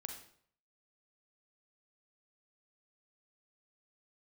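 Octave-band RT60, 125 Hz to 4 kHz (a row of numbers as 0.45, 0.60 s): 0.70, 0.55, 0.60, 0.60, 0.55, 0.50 s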